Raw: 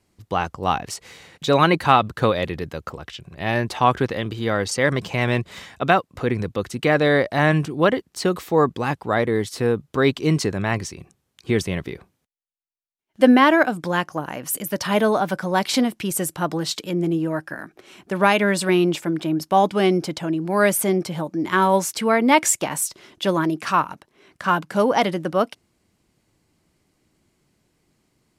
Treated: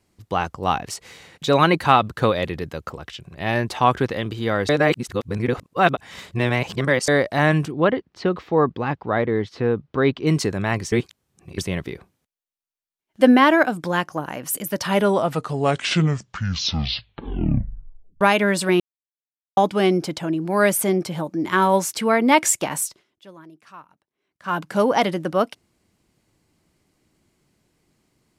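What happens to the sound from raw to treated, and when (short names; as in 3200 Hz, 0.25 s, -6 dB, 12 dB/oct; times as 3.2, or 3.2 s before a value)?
4.69–7.08 reverse
7.71–10.27 air absorption 230 m
10.92–11.58 reverse
14.82 tape stop 3.39 s
18.8–19.57 mute
22.8–24.63 dip -23.5 dB, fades 0.24 s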